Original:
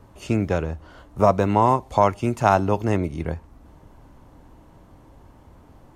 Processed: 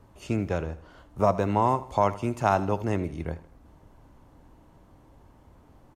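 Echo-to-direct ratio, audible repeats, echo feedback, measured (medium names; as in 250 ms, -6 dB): -16.0 dB, 3, 44%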